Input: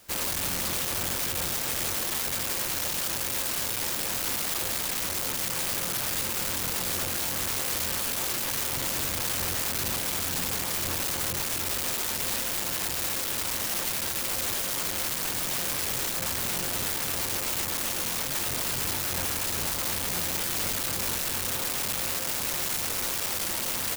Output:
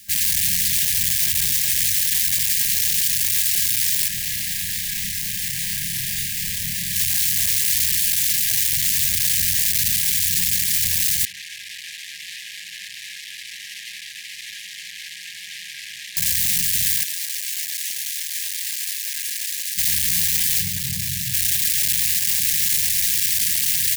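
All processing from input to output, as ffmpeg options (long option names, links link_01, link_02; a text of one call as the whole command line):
ffmpeg -i in.wav -filter_complex "[0:a]asettb=1/sr,asplit=3[link_01][link_02][link_03];[link_01]atrim=end=4.084[link_04];[link_02]atrim=start=4.08:end=6.96,asetpts=PTS-STARTPTS,afade=type=in:duration=0.004:curve=qsin,afade=type=out:start_time=2.876:duration=0.004:curve=qsin,highshelf=frequency=2500:gain=-8.5,asplit=2[link_05][link_06];[link_06]adelay=30,volume=-3dB[link_07];[link_05][link_07]amix=inputs=2:normalize=0,atrim=end_sample=127008[link_08];[link_03]atrim=start=6.956[link_09];[link_04][link_08]acrossfade=duration=0.004:curve1=hsin:curve2=qsin[link_10];[link_10][link_09]acrossfade=duration=0.004:curve1=qsin:curve2=hsin,asettb=1/sr,asplit=3[link_11][link_12][link_13];[link_11]atrim=end=11.254[link_14];[link_12]atrim=start=11.25:end=16.17,asetpts=PTS-STARTPTS,afade=type=in:duration=0.004:curve=qsin,afade=type=out:start_time=4.916:duration=0.004:curve=qsin,bandpass=frequency=2600:width_type=q:width=0.9,highshelf=frequency=2700:gain=-10.5[link_15];[link_13]atrim=start=16.166[link_16];[link_14][link_15]acrossfade=duration=0.004:curve1=hsin:curve2=qsin[link_17];[link_17][link_16]acrossfade=duration=0.004:curve1=qsin:curve2=hsin,asettb=1/sr,asplit=3[link_18][link_19][link_20];[link_18]atrim=end=17.034[link_21];[link_19]atrim=start=17.03:end=19.78,asetpts=PTS-STARTPTS,afade=type=in:duration=0.004:curve=qsin,afade=type=out:start_time=2.746:duration=0.004:curve=qsin,highshelf=frequency=11000:gain=-5.5,aeval=exprs='max(val(0),0)':channel_layout=same,highpass=620[link_22];[link_20]atrim=start=19.776[link_23];[link_21][link_22]acrossfade=duration=0.004:curve1=hsin:curve2=qsin[link_24];[link_24][link_23]acrossfade=duration=0.004:curve1=qsin:curve2=hsin,asettb=1/sr,asplit=3[link_25][link_26][link_27];[link_25]atrim=end=20.604[link_28];[link_26]atrim=start=20.6:end=21.34,asetpts=PTS-STARTPTS,afade=type=in:duration=0.004:curve=qsin,afade=type=out:start_time=0.736:duration=0.004:curve=qsin,highpass=47,equalizer=frequency=120:width_type=o:width=1.8:gain=15,acrossover=split=120|380|7000[link_29][link_30][link_31][link_32];[link_29]acompressor=threshold=-41dB:ratio=3[link_33];[link_30]acompressor=threshold=-37dB:ratio=3[link_34];[link_31]acompressor=threshold=-37dB:ratio=3[link_35];[link_32]acompressor=threshold=-37dB:ratio=3[link_36];[link_33][link_34][link_35][link_36]amix=inputs=4:normalize=0[link_37];[link_27]atrim=start=21.336[link_38];[link_28][link_37]acrossfade=duration=0.004:curve1=hsin:curve2=qsin[link_39];[link_39][link_38]acrossfade=duration=0.004:curve1=qsin:curve2=hsin,afftfilt=real='re*(1-between(b*sr/4096,210,1600))':imag='im*(1-between(b*sr/4096,210,1600))':win_size=4096:overlap=0.75,highshelf=frequency=3000:gain=7.5,acontrast=39,volume=-1.5dB" out.wav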